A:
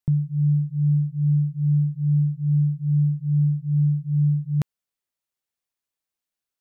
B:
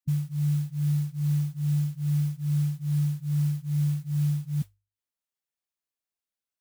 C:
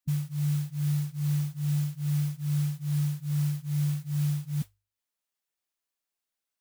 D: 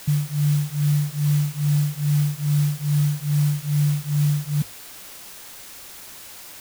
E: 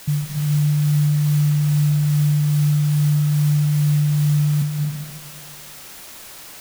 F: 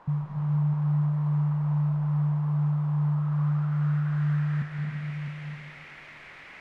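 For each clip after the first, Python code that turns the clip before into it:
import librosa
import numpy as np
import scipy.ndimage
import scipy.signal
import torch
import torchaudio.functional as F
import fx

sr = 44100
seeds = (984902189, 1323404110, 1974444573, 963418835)

y1 = fx.hum_notches(x, sr, base_hz=50, count=2)
y1 = fx.spec_gate(y1, sr, threshold_db=-15, keep='strong')
y1 = fx.mod_noise(y1, sr, seeds[0], snr_db=24)
y1 = y1 * librosa.db_to_amplitude(-5.5)
y2 = fx.peak_eq(y1, sr, hz=94.0, db=-7.5, octaves=2.2)
y2 = y2 * librosa.db_to_amplitude(3.5)
y3 = fx.quant_dither(y2, sr, seeds[1], bits=8, dither='triangular')
y3 = y3 * librosa.db_to_amplitude(7.5)
y4 = fx.rev_freeverb(y3, sr, rt60_s=1.5, hf_ratio=0.6, predelay_ms=120, drr_db=0.0)
y5 = fx.filter_sweep_lowpass(y4, sr, from_hz=1000.0, to_hz=2100.0, start_s=3.03, end_s=5.08, q=3.7)
y5 = y5 + 10.0 ** (-9.5 / 20.0) * np.pad(y5, (int(658 * sr / 1000.0), 0))[:len(y5)]
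y5 = y5 * librosa.db_to_amplitude(-7.0)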